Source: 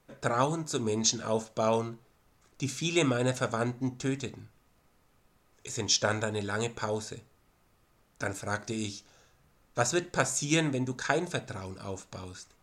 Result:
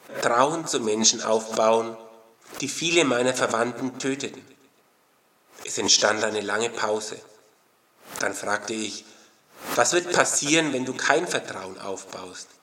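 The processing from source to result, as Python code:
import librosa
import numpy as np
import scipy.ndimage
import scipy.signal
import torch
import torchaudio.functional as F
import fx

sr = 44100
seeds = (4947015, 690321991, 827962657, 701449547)

y = scipy.signal.sosfilt(scipy.signal.butter(2, 310.0, 'highpass', fs=sr, output='sos'), x)
y = fx.echo_feedback(y, sr, ms=135, feedback_pct=51, wet_db=-19.5)
y = fx.pre_swell(y, sr, db_per_s=140.0)
y = y * 10.0 ** (8.0 / 20.0)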